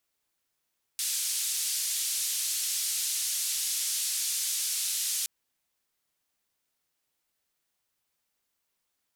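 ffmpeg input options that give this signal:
-f lavfi -i "anoisesrc=c=white:d=4.27:r=44100:seed=1,highpass=f=4100,lowpass=f=11000,volume=-20.5dB"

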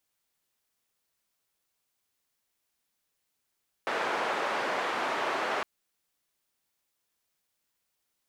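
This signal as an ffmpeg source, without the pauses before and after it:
-f lavfi -i "anoisesrc=c=white:d=1.76:r=44100:seed=1,highpass=f=430,lowpass=f=1300,volume=-12.2dB"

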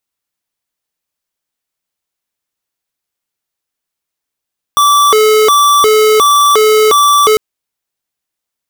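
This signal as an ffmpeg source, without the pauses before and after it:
-f lavfi -i "aevalsrc='0.422*(2*lt(mod((795.5*t+364.5/1.4*(0.5-abs(mod(1.4*t,1)-0.5))),1),0.5)-1)':d=2.6:s=44100"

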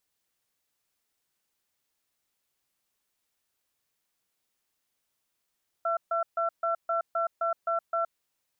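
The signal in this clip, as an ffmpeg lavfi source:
-f lavfi -i "aevalsrc='0.0422*(sin(2*PI*671*t)+sin(2*PI*1350*t))*clip(min(mod(t,0.26),0.12-mod(t,0.26))/0.005,0,1)':d=2.21:s=44100"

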